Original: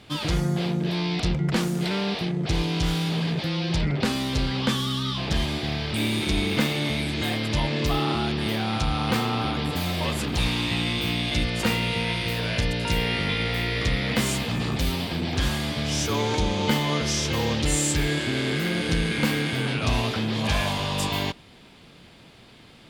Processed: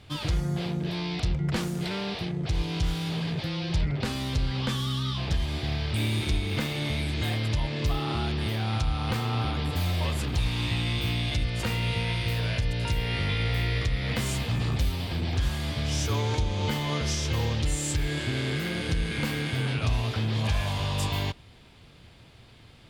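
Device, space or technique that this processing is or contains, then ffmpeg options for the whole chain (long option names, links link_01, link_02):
car stereo with a boomy subwoofer: -af "lowshelf=frequency=140:width_type=q:width=1.5:gain=7.5,alimiter=limit=-12.5dB:level=0:latency=1:release=233,volume=-4.5dB"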